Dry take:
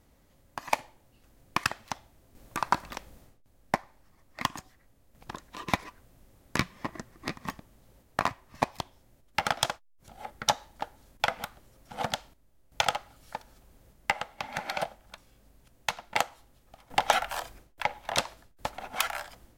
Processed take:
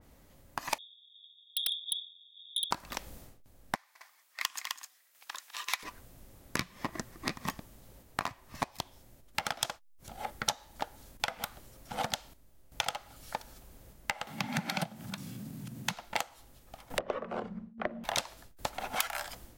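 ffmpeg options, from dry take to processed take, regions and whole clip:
-filter_complex "[0:a]asettb=1/sr,asplit=3[a][b][c];[a]atrim=end=0.784[d];[b]atrim=start=0.78:end=2.71,asetpts=PTS-STARTPTS,afade=t=in:d=0.004:c=qsin,afade=t=out:st=1.926:d=0.004:c=qsin,asuperpass=centerf=3500:order=20:qfactor=7.8,aeval=exprs='0.0355*sin(PI/2*8.91*val(0)/0.0355)':c=same[e];[c]atrim=start=2.706[f];[d][e]acrossfade=d=0.004:c1=hsin:c2=qsin[g];[g][f]acrossfade=d=0.004:c1=qsin:c2=hsin,asettb=1/sr,asplit=3[h][i][j];[h]atrim=end=3.754[k];[i]atrim=start=3.75:end=5.83,asetpts=PTS-STARTPTS,afade=t=in:d=0.004:c=qsin,afade=t=out:st=2.076:d=0.004:c=qsin,highpass=1.5k,aecho=1:1:202|258:0.178|0.335,atrim=end_sample=91728[l];[j]atrim=start=5.826[m];[k][l]acrossfade=d=0.004:c1=hsin:c2=qsin[n];[n][m]acrossfade=d=0.004:c1=qsin:c2=hsin,asettb=1/sr,asplit=3[o][p][q];[o]atrim=end=14.274[r];[p]atrim=start=14.27:end=15.94,asetpts=PTS-STARTPTS,afade=t=in:d=0.004:c=qsin,afade=t=out:st=1.666:d=0.004:c=qsin,highpass=f=130:w=0.5412,highpass=f=130:w=1.3066,lowshelf=f=310:t=q:w=1.5:g=14,acompressor=mode=upward:threshold=-37dB:ratio=2.5:attack=3.2:release=140:knee=2.83:detection=peak[s];[q]atrim=start=15.936[t];[r][s]acrossfade=d=0.004:c1=hsin:c2=qsin[u];[u][t]acrossfade=d=0.004:c1=qsin:c2=hsin,asettb=1/sr,asplit=3[v][w][x];[v]atrim=end=16.984[y];[w]atrim=start=16.98:end=18.04,asetpts=PTS-STARTPTS,afade=t=in:d=0.004:c=qsin,afade=t=out:st=1.056:d=0.004:c=qsin,asubboost=boost=11:cutoff=53,lowpass=1.3k,afreqshift=-230[z];[x]atrim=start=18.036[aa];[y][z]acrossfade=d=0.004:c1=hsin:c2=qsin[ab];[ab][aa]acrossfade=d=0.004:c1=qsin:c2=hsin,highshelf=f=12k:g=4.5,acompressor=threshold=-34dB:ratio=6,adynamicequalizer=threshold=0.00282:dfrequency=2900:dqfactor=0.7:tfrequency=2900:tqfactor=0.7:attack=5:release=100:ratio=0.375:range=2:mode=boostabove:tftype=highshelf,volume=3.5dB"

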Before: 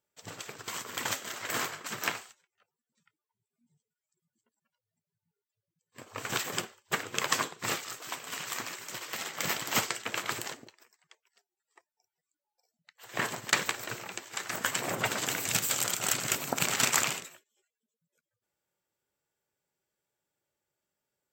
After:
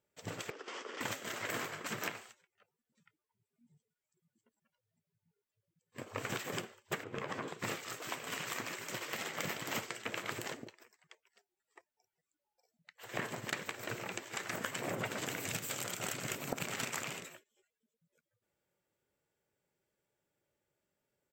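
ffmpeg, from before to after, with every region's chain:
-filter_complex "[0:a]asettb=1/sr,asplit=3[a][b][c];[a]atrim=end=0.504[d];[b]atrim=start=0.5:end=1.01,asetpts=PTS-STARTPTS,afade=t=in:d=0.004:c=qsin,afade=t=out:st=0.506:d=0.004:c=qsin,aeval=exprs='0.0237*(abs(mod(val(0)/0.0237+3,4)-2)-1)':c=same,highpass=f=330:w=0.5412,highpass=f=330:w=1.3066,equalizer=f=660:t=q:w=4:g=-5,equalizer=f=1k:t=q:w=4:g=-5,equalizer=f=1.6k:t=q:w=4:g=-4,equalizer=f=2.3k:t=q:w=4:g=-6,equalizer=f=4k:t=q:w=4:g=-9,lowpass=f=5.3k:w=0.5412,lowpass=f=5.3k:w=1.3066[e];[c]atrim=start=1.006[f];[d][e]acrossfade=d=0.004:c1=hsin:c2=qsin[g];[g][f]acrossfade=d=0.004:c1=qsin:c2=hsin,asettb=1/sr,asplit=3[h][i][j];[h]atrim=end=7.044[k];[i]atrim=start=7.04:end=7.48,asetpts=PTS-STARTPTS,afade=t=in:d=0.004:c=qsin,afade=t=out:st=0.436:d=0.004:c=qsin,lowpass=f=1.2k:p=1,acompressor=threshold=-35dB:ratio=6:attack=3.2:release=140:knee=1:detection=peak,asplit=2[l][m];[m]adelay=15,volume=-13dB[n];[l][n]amix=inputs=2:normalize=0,atrim=end_sample=19404[o];[j]atrim=start=7.476[p];[k][o]acrossfade=d=0.004:c1=hsin:c2=qsin[q];[q][p]acrossfade=d=0.004:c1=qsin:c2=hsin,firequalizer=gain_entry='entry(190,0);entry(740,-7);entry(2100,-3);entry(4200,-8)':delay=0.05:min_phase=1,acompressor=threshold=-41dB:ratio=6,equalizer=f=580:w=1.2:g=4.5,volume=4.5dB"

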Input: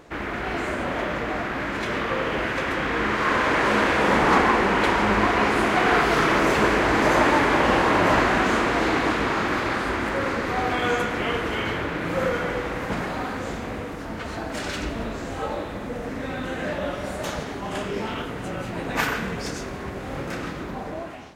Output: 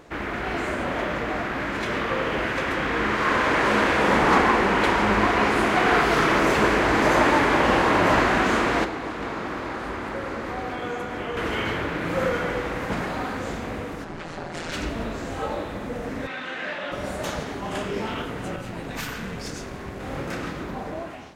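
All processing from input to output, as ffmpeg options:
-filter_complex "[0:a]asettb=1/sr,asplit=3[a][b][c];[a]atrim=end=8.844[d];[b]atrim=start=8.84:end=11.37,asetpts=PTS-STARTPTS,afade=t=in:d=0.004:c=qsin,afade=t=out:st=2.526:d=0.004:c=qsin,acrossover=split=480|1200[e][f][g];[e]acompressor=threshold=-34dB:ratio=4[h];[f]acompressor=threshold=-35dB:ratio=4[i];[g]acompressor=threshold=-40dB:ratio=4[j];[h][i][j]amix=inputs=3:normalize=0,aecho=1:1:385:0.422,atrim=end_sample=111573[k];[c]atrim=start=11.366[l];[d][k]acrossfade=d=0.004:c1=hsin:c2=qsin[m];[m][l]acrossfade=d=0.004:c1=qsin:c2=hsin,asettb=1/sr,asplit=3[n][o][p];[n]atrim=end=14.044[q];[o]atrim=start=14.04:end=14.72,asetpts=PTS-STARTPTS,afade=t=in:d=0.004:c=qsin,afade=t=out:st=0.676:d=0.004:c=qsin,lowpass=8.9k,aeval=exprs='val(0)*sin(2*PI*82*n/s)':c=same[r];[p]atrim=start=14.716[s];[q][r]acrossfade=d=0.004:c1=hsin:c2=qsin[t];[t][s]acrossfade=d=0.004:c1=qsin:c2=hsin,asettb=1/sr,asplit=3[u][v][w];[u]atrim=end=16.274[x];[v]atrim=start=16.27:end=16.92,asetpts=PTS-STARTPTS,afade=t=in:d=0.004:c=qsin,afade=t=out:st=0.646:d=0.004:c=qsin,tiltshelf=f=1.2k:g=-9.5,acrusher=bits=5:mix=0:aa=0.5,highpass=170,lowpass=2.8k[y];[w]atrim=start=16.916[z];[x][y]acrossfade=d=0.004:c1=hsin:c2=qsin[aa];[aa][z]acrossfade=d=0.004:c1=qsin:c2=hsin,asettb=1/sr,asplit=3[ab][ac][ad];[ab]atrim=end=18.564[ae];[ac]atrim=start=18.56:end=20,asetpts=PTS-STARTPTS,afade=t=in:d=0.004:c=qsin,afade=t=out:st=1.436:d=0.004:c=qsin,acrossover=split=230|3000[af][ag][ah];[ag]acompressor=threshold=-32dB:ratio=3:attack=3.2:release=140:knee=2.83:detection=peak[ai];[af][ai][ah]amix=inputs=3:normalize=0,aeval=exprs='(tanh(11.2*val(0)+0.45)-tanh(0.45))/11.2':c=same[aj];[ad]atrim=start=19.996[ak];[ae][aj]acrossfade=d=0.004:c1=hsin:c2=qsin[al];[al][ak]acrossfade=d=0.004:c1=qsin:c2=hsin"

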